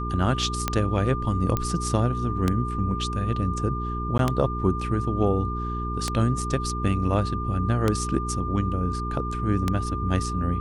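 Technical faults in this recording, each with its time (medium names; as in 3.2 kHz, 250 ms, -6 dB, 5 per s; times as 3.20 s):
hum 60 Hz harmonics 7 -30 dBFS
tick 33 1/3 rpm -8 dBFS
whine 1.2 kHz -31 dBFS
1.57 s: pop -11 dBFS
4.18–4.19 s: dropout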